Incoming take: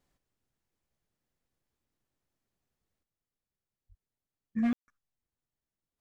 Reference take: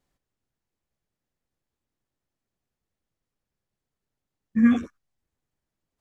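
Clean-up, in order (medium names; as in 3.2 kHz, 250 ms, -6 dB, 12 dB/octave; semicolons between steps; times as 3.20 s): clip repair -24 dBFS; 3.88–4.00 s: high-pass 140 Hz 24 dB/octave; room tone fill 4.73–4.88 s; 3.03 s: gain correction +9 dB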